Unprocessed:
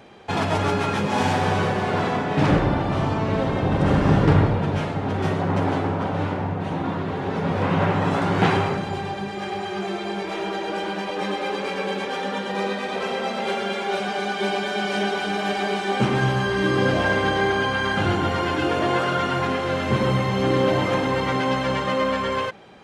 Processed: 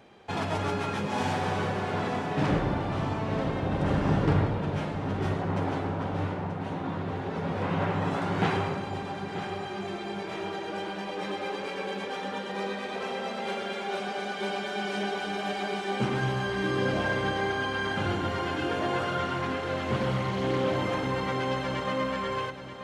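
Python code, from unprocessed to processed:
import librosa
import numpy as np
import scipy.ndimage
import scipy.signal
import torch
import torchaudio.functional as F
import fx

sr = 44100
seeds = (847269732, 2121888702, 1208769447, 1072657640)

y = fx.echo_feedback(x, sr, ms=933, feedback_pct=42, wet_db=-11.5)
y = fx.doppler_dist(y, sr, depth_ms=0.19, at=(19.2, 20.76))
y = y * 10.0 ** (-7.5 / 20.0)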